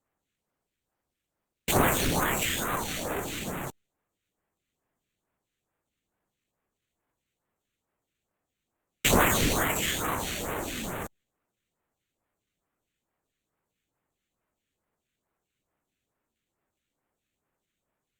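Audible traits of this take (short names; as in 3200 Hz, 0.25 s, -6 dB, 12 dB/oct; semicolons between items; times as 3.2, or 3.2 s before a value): aliases and images of a low sample rate 5100 Hz, jitter 0%; phasing stages 2, 2.3 Hz, lowest notch 800–4800 Hz; Opus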